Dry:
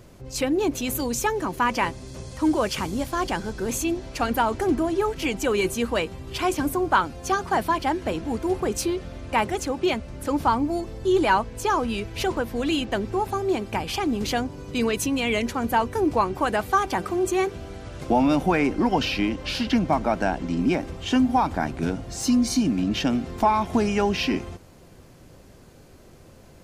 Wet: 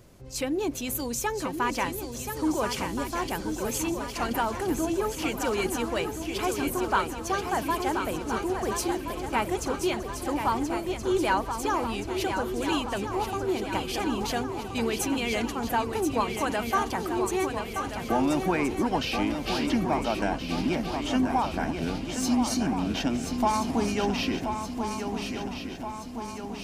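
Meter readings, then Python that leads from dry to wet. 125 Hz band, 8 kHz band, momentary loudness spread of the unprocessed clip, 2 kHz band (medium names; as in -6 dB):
-3.5 dB, -1.0 dB, 6 LU, -3.5 dB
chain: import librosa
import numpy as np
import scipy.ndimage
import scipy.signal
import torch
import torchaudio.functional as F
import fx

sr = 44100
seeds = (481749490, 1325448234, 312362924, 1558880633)

p1 = fx.high_shelf(x, sr, hz=6000.0, db=4.5)
p2 = p1 + fx.echo_swing(p1, sr, ms=1373, ratio=3, feedback_pct=56, wet_db=-7, dry=0)
y = p2 * librosa.db_to_amplitude(-5.5)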